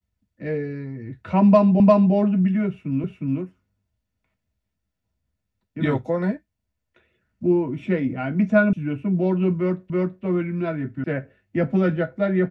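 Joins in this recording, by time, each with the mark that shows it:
1.8 repeat of the last 0.35 s
3.04 repeat of the last 0.36 s
8.73 sound cut off
9.9 repeat of the last 0.33 s
11.04 sound cut off

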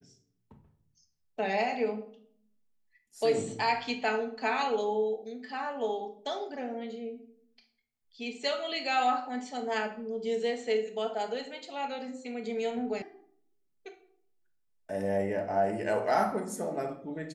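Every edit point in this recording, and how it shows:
13.02 sound cut off

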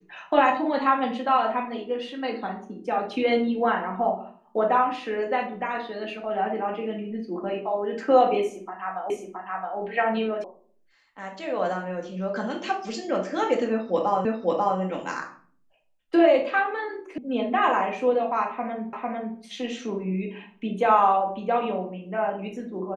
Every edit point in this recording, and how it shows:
9.1 repeat of the last 0.67 s
10.44 sound cut off
14.25 repeat of the last 0.54 s
17.18 sound cut off
18.93 repeat of the last 0.45 s

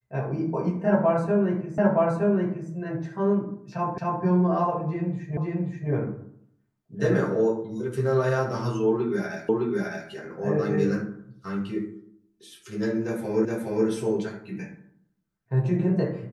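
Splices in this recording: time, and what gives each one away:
1.78 repeat of the last 0.92 s
3.98 repeat of the last 0.26 s
5.37 repeat of the last 0.53 s
9.49 repeat of the last 0.61 s
13.45 repeat of the last 0.42 s

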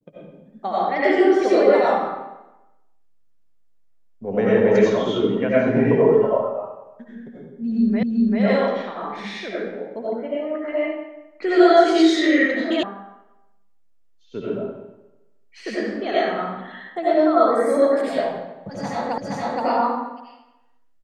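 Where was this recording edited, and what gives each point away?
8.03 repeat of the last 0.39 s
12.83 sound cut off
19.18 repeat of the last 0.47 s

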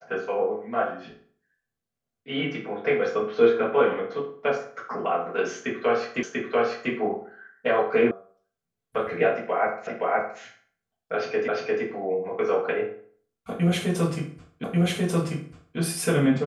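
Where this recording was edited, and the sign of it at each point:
6.23 repeat of the last 0.69 s
8.11 sound cut off
9.87 repeat of the last 0.52 s
11.48 repeat of the last 0.35 s
14.64 repeat of the last 1.14 s

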